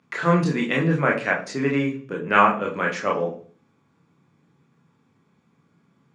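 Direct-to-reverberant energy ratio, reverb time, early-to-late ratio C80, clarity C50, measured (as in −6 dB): −1.5 dB, 0.45 s, 15.0 dB, 10.5 dB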